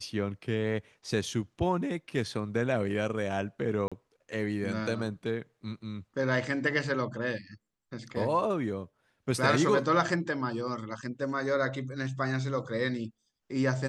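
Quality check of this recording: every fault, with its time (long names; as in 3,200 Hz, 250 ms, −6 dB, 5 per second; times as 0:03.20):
0:03.88–0:03.92: drop-out 36 ms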